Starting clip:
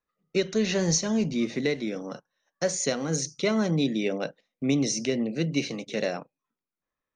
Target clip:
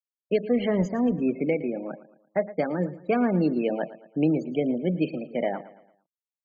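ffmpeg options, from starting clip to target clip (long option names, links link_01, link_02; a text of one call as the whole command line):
ffmpeg -i in.wav -af "lowpass=1800,afftfilt=real='re*gte(hypot(re,im),0.02)':imag='im*gte(hypot(re,im),0.02)':win_size=1024:overlap=0.75,asetrate=48951,aresample=44100,aecho=1:1:113|226|339|452:0.15|0.0628|0.0264|0.0111,volume=2dB" out.wav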